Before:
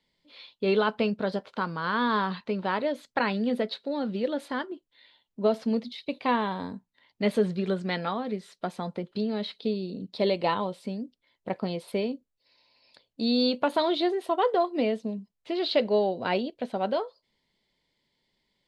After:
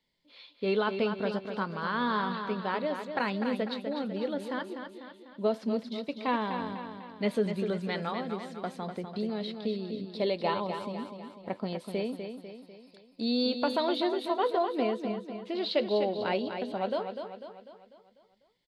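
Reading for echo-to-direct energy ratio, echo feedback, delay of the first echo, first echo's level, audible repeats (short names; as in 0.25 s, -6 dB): -6.0 dB, 50%, 0.248 s, -7.5 dB, 5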